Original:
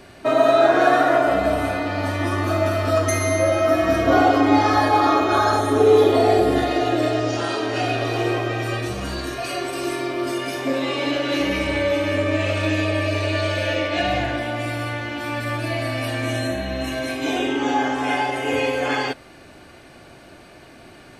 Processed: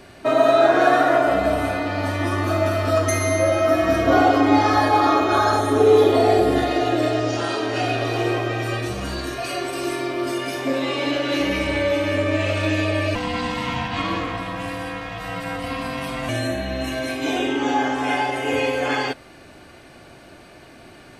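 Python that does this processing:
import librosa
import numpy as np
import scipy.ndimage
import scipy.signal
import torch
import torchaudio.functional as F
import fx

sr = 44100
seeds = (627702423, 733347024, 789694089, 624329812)

y = fx.ring_mod(x, sr, carrier_hz=400.0, at=(13.15, 16.29))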